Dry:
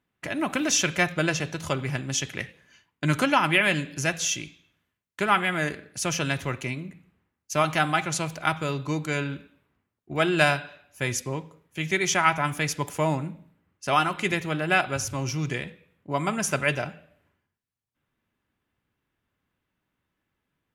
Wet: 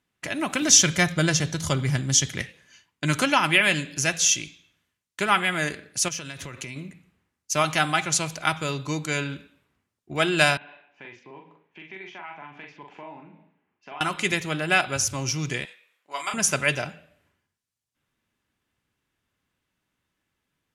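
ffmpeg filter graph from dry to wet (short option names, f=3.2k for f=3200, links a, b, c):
-filter_complex "[0:a]asettb=1/sr,asplit=3[a][b][c];[a]atrim=end=0.624[d];[b]atrim=start=0.62:end=2.42,asetpts=PTS-STARTPTS,afade=t=in:d=0.004:c=qsin,afade=t=out:st=1.796:d=0.004:c=qsin,bass=f=250:g=8,treble=f=4k:g=2,bandreject=f=2.6k:w=7.8[e];[c]atrim=start=2.416[f];[d][e]acrossfade=d=0.004:c1=hsin:c2=qsin[g];[g][f]acrossfade=d=0.004:c1=qsin:c2=hsin,asettb=1/sr,asplit=3[h][i][j];[h]atrim=end=6.084[k];[i]atrim=start=6.08:end=6.76,asetpts=PTS-STARTPTS,afade=t=in:d=0.004:c=qsin,afade=t=out:st=0.676:d=0.004:c=qsin,equalizer=f=790:w=6.8:g=-4.5,acompressor=threshold=-32dB:ratio=16:attack=3.2:release=140:knee=1:detection=peak[l];[j]atrim=start=6.756[m];[k][l]acrossfade=d=0.004:c1=hsin:c2=qsin[n];[n][m]acrossfade=d=0.004:c1=qsin:c2=hsin,asettb=1/sr,asplit=3[o][p][q];[o]atrim=end=10.574[r];[p]atrim=start=10.57:end=14.01,asetpts=PTS-STARTPTS,afade=t=in:d=0.004:c=qsin,afade=t=out:st=3.436:d=0.004:c=qsin,acompressor=threshold=-40dB:ratio=3:attack=3.2:release=140:knee=1:detection=peak,highpass=280,equalizer=f=540:t=q:w=4:g=-7,equalizer=f=870:t=q:w=4:g=4,equalizer=f=1.3k:t=q:w=4:g=-7,equalizer=f=1.9k:t=q:w=4:g=-3,lowpass=f=2.6k:w=0.5412,lowpass=f=2.6k:w=1.3066,asplit=2[s][t];[t]adelay=42,volume=-4dB[u];[s][u]amix=inputs=2:normalize=0,atrim=end_sample=151704[v];[q]atrim=start=14.006[w];[r][v]acrossfade=d=0.004:c1=hsin:c2=qsin[x];[x][w]acrossfade=d=0.004:c1=qsin:c2=hsin,asettb=1/sr,asplit=3[y][z][aa];[y]atrim=end=15.654[ab];[z]atrim=start=15.65:end=16.34,asetpts=PTS-STARTPTS,afade=t=in:d=0.004:c=qsin,afade=t=out:st=0.686:d=0.004:c=qsin,highpass=980,asplit=2[ac][ad];[ad]adelay=33,volume=-6dB[ae];[ac][ae]amix=inputs=2:normalize=0,atrim=end_sample=30429[af];[aa]atrim=start=16.336[ag];[ab][af]acrossfade=d=0.004:c1=hsin:c2=qsin[ah];[ah][ag]acrossfade=d=0.004:c1=qsin:c2=hsin,lowpass=7k,aemphasis=mode=production:type=75fm"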